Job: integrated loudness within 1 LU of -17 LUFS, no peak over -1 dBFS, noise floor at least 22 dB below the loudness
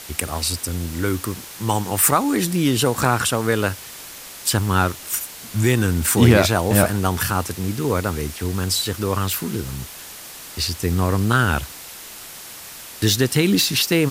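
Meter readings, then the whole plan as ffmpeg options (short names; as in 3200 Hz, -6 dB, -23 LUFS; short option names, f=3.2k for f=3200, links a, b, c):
noise floor -38 dBFS; noise floor target -42 dBFS; loudness -20.0 LUFS; peak -1.5 dBFS; loudness target -17.0 LUFS
-> -af "afftdn=nr=6:nf=-38"
-af "volume=3dB,alimiter=limit=-1dB:level=0:latency=1"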